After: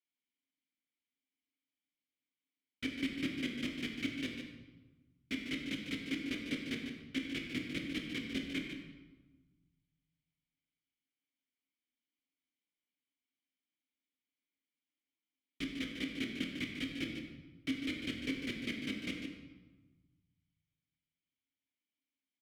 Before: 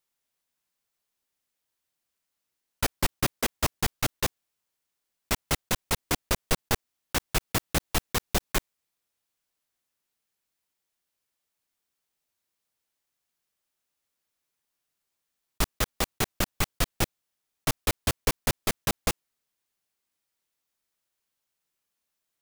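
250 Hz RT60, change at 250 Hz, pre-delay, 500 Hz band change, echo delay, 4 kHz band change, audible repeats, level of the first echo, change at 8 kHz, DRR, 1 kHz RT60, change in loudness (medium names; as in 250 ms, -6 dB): 1.7 s, -1.0 dB, 16 ms, -14.5 dB, 149 ms, -9.0 dB, 1, -8.5 dB, -23.5 dB, 0.0 dB, 1.3 s, -10.0 dB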